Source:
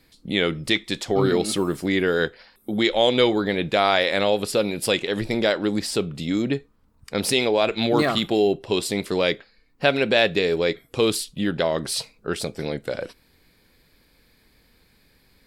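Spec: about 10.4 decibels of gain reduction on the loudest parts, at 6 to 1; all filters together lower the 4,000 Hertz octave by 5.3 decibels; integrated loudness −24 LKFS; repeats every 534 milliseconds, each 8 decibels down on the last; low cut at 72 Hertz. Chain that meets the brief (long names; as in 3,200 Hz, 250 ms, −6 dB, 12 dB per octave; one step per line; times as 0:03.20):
high-pass filter 72 Hz
parametric band 4,000 Hz −6.5 dB
downward compressor 6 to 1, threshold −26 dBFS
repeating echo 534 ms, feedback 40%, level −8 dB
level +6.5 dB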